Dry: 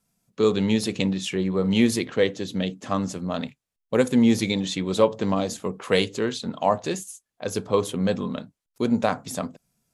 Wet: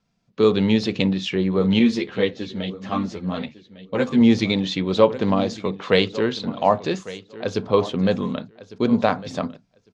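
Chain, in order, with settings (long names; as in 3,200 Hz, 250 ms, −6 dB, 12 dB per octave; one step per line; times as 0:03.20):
low-pass filter 5,000 Hz 24 dB per octave
repeating echo 1,153 ms, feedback 15%, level −17 dB
0:01.79–0:04.21: string-ensemble chorus
level +3.5 dB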